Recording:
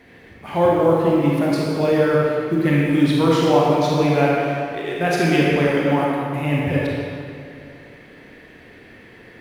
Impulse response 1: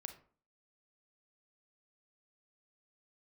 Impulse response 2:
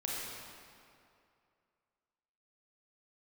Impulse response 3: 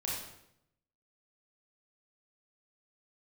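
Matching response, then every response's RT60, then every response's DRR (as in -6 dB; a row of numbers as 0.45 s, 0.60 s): 2; 0.45 s, 2.5 s, 0.80 s; 7.0 dB, -5.0 dB, -5.0 dB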